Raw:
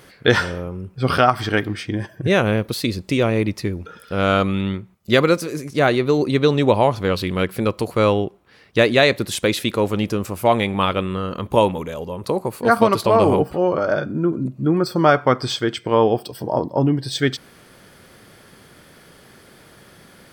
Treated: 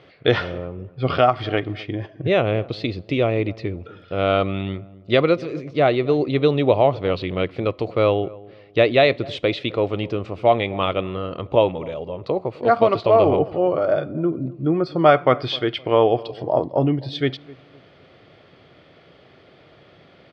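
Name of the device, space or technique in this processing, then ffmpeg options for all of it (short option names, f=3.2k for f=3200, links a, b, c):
guitar cabinet: -filter_complex "[0:a]asettb=1/sr,asplit=3[a][b][c];[a]atrim=end=15.054[d];[b]atrim=start=15.05:end=16.96,asetpts=PTS-STARTPTS,afade=t=in:d=0.004:c=qsin,afade=t=out:st=1.906:d=0.004:c=qsin,equalizer=f=2.1k:t=o:w=2.5:g=4.5[e];[c]atrim=start=16.956[f];[d][e]acrossfade=d=0.004:c1=hsin:c2=qsin[g];[g][f]acrossfade=d=0.004:c1=qsin:c2=hsin,highpass=77,equalizer=f=210:t=q:w=4:g=-9,equalizer=f=660:t=q:w=4:g=5,equalizer=f=940:t=q:w=4:g=-6,equalizer=f=1.6k:t=q:w=4:g=-9,lowpass=f=3.7k:w=0.5412,lowpass=f=3.7k:w=1.3066,asplit=2[h][i];[i]adelay=257,lowpass=f=880:p=1,volume=-19.5dB,asplit=2[j][k];[k]adelay=257,lowpass=f=880:p=1,volume=0.36,asplit=2[l][m];[m]adelay=257,lowpass=f=880:p=1,volume=0.36[n];[h][j][l][n]amix=inputs=4:normalize=0,volume=-1dB"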